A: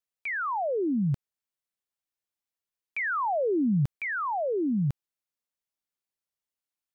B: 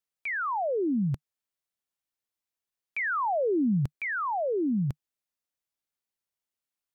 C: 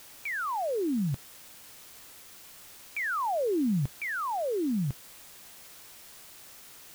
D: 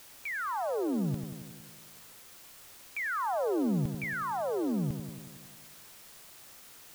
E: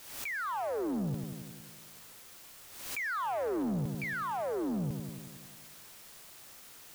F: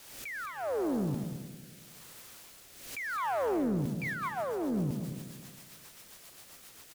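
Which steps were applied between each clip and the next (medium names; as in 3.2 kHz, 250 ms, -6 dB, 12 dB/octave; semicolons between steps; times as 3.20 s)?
dynamic bell 150 Hz, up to -3 dB, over -40 dBFS, Q 5
word length cut 8-bit, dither triangular; trim -2 dB
bucket-brigade echo 92 ms, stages 1024, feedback 67%, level -8.5 dB; trim -2.5 dB
saturation -28.5 dBFS, distortion -15 dB; swell ahead of each attack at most 61 dB/s
rotary cabinet horn 0.8 Hz, later 7.5 Hz, at 3.42 s; on a send: delay 215 ms -8.5 dB; on the sum: trim +2.5 dB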